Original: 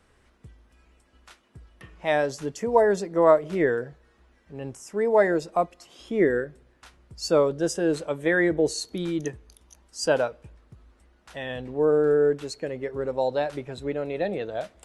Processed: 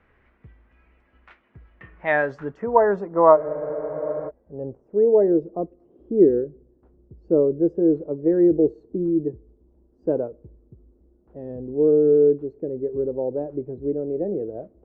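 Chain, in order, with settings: low-pass sweep 2.2 kHz -> 380 Hz, 1.69–5.33 s; spectral freeze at 3.40 s, 0.88 s; tape noise reduction on one side only decoder only

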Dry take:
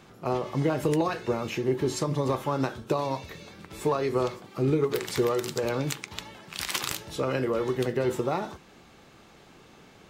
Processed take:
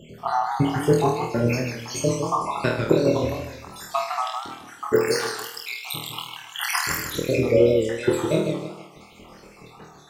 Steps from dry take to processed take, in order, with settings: random holes in the spectrogram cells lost 80%; flutter echo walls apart 4.3 m, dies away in 0.55 s; modulated delay 155 ms, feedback 33%, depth 144 cents, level -6 dB; trim +9 dB

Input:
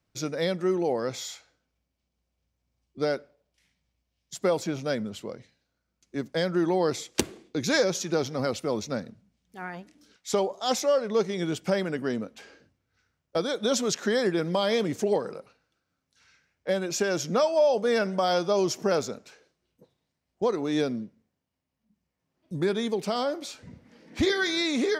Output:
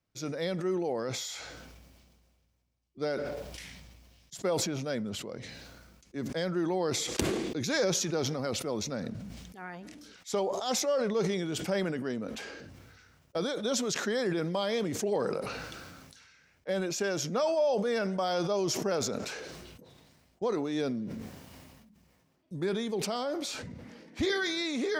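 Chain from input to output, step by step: decay stretcher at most 28 dB/s; trim -6 dB

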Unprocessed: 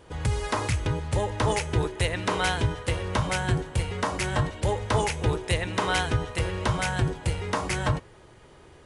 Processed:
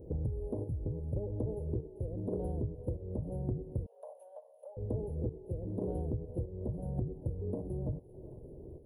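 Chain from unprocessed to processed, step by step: square tremolo 0.86 Hz, depth 60%, duty 55%; inverse Chebyshev band-stop 1.2–8.1 kHz, stop band 50 dB; thinning echo 392 ms, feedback 65%, high-pass 840 Hz, level -16 dB; compression 12:1, threshold -37 dBFS, peak gain reduction 18.5 dB; 3.86–4.77 s: steep high-pass 540 Hz 72 dB/octave; trim +5 dB

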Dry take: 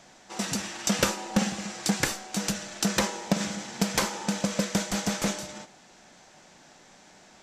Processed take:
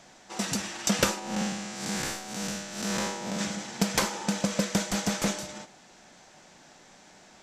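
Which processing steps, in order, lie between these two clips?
1.19–3.39 s: spectral blur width 148 ms

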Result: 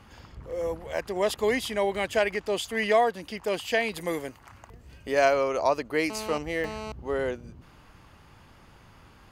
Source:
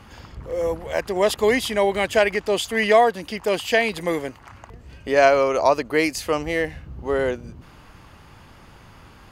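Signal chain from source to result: 3.94–5.34 s: treble shelf 8.8 kHz +10 dB; 6.10–6.92 s: mobile phone buzz -30 dBFS; trim -6.5 dB

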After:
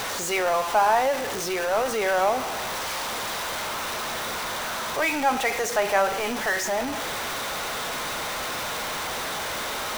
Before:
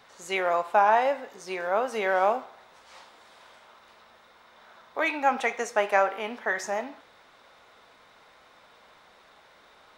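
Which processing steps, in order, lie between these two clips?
jump at every zero crossing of -23 dBFS; whistle 5.9 kHz -46 dBFS; trim -1.5 dB

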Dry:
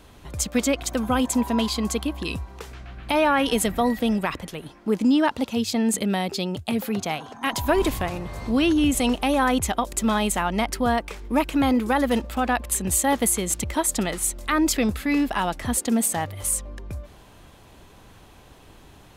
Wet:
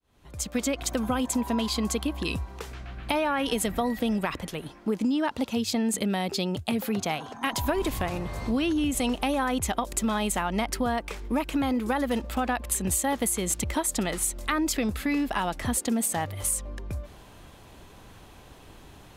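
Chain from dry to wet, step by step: fade-in on the opening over 0.83 s; compression, threshold -23 dBFS, peak gain reduction 8 dB

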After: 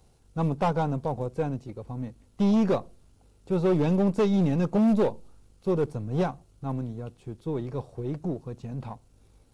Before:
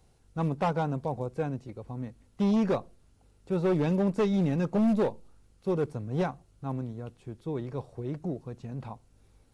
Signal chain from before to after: partial rectifier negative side -3 dB; peaking EQ 1.8 kHz -4 dB 0.8 oct; trim +4.5 dB

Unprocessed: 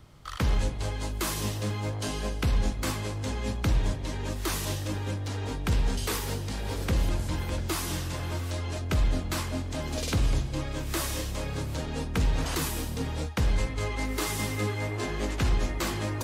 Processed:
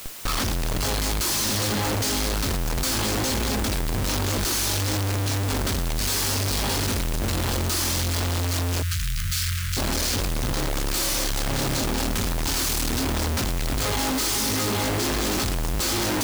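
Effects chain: reverberation RT60 0.35 s, pre-delay 3 ms, DRR -6 dB; in parallel at -9 dB: integer overflow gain 6 dB; on the sum: resonant high shelf 3.3 kHz +10 dB, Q 1.5; compression 8:1, threshold -15 dBFS, peak gain reduction 9.5 dB; bit crusher 5-bit; flange 1.5 Hz, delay 9.4 ms, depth 1 ms, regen -88%; Schmitt trigger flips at -35.5 dBFS; added noise white -39 dBFS; 8.82–9.77 s: inverse Chebyshev band-stop 260–870 Hz, stop band 40 dB

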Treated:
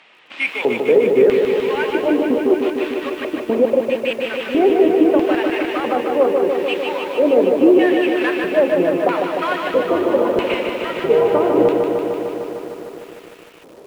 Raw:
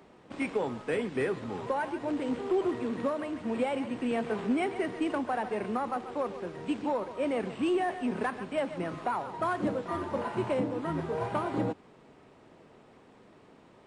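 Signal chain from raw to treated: de-hum 70.55 Hz, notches 7; flange 0.51 Hz, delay 1.1 ms, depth 5.5 ms, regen -76%; LFO band-pass square 0.77 Hz 430–2700 Hz; 2.18–4.39 s: trance gate "x.x.x.x.x" 189 bpm -24 dB; loudness maximiser +30.5 dB; bit-crushed delay 151 ms, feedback 80%, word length 7-bit, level -5 dB; trim -5 dB

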